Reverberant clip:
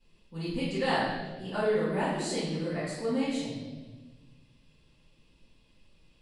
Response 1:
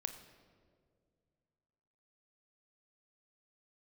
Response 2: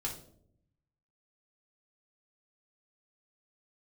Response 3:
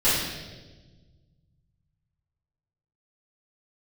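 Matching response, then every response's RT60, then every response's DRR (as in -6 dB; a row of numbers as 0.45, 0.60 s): 3; 2.1, 0.65, 1.3 s; 7.5, -2.5, -13.0 dB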